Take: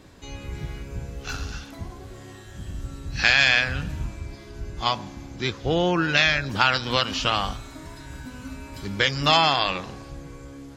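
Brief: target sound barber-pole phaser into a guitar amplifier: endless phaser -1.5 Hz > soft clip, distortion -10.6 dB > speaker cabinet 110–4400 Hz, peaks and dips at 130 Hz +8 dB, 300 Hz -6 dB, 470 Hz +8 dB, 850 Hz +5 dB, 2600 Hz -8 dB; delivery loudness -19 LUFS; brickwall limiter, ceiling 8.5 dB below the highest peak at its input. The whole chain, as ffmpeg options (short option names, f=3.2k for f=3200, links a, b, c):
-filter_complex "[0:a]alimiter=limit=-11.5dB:level=0:latency=1,asplit=2[a][b];[b]afreqshift=-1.5[c];[a][c]amix=inputs=2:normalize=1,asoftclip=threshold=-25.5dB,highpass=110,equalizer=f=130:t=q:w=4:g=8,equalizer=f=300:t=q:w=4:g=-6,equalizer=f=470:t=q:w=4:g=8,equalizer=f=850:t=q:w=4:g=5,equalizer=f=2.6k:t=q:w=4:g=-8,lowpass=f=4.4k:w=0.5412,lowpass=f=4.4k:w=1.3066,volume=15.5dB"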